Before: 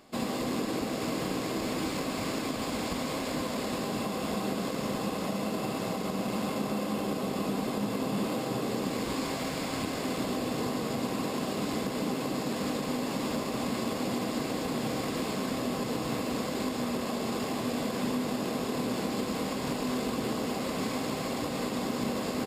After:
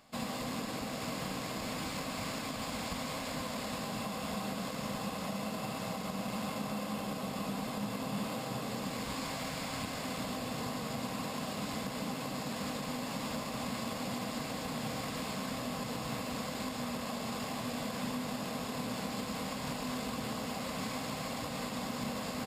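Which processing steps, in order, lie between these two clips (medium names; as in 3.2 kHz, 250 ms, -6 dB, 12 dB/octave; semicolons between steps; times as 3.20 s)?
peaking EQ 360 Hz -14 dB 0.64 oct; trim -3 dB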